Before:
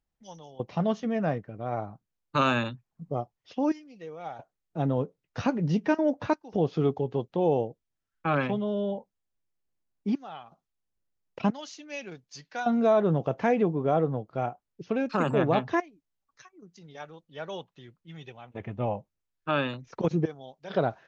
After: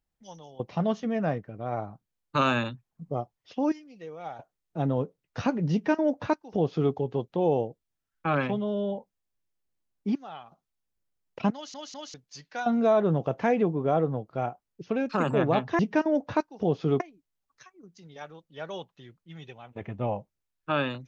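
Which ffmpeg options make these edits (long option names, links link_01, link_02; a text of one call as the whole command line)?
ffmpeg -i in.wav -filter_complex "[0:a]asplit=6[link_01][link_02][link_03][link_04][link_05][link_06];[link_01]atrim=end=11.742[link_07];[link_02]atrim=start=11.538:end=11.742[link_08];[link_03]atrim=start=11.538:end=11.742[link_09];[link_04]atrim=start=12.138:end=15.792[link_10];[link_05]atrim=start=5.718:end=6.932[link_11];[link_06]atrim=start=15.788[link_12];[link_07][link_08]acrossfade=duration=0.004:curve1=hsin:curve2=hsin[link_13];[link_13][link_09]acrossfade=duration=0.004:curve1=hsin:curve2=hsin[link_14];[link_14][link_10]acrossfade=duration=0.004:curve1=hsin:curve2=hsin[link_15];[link_15][link_11]acrossfade=duration=0.004:curve1=hsin:curve2=hsin[link_16];[link_16][link_12]acrossfade=duration=0.004:curve1=hsin:curve2=hsin" out.wav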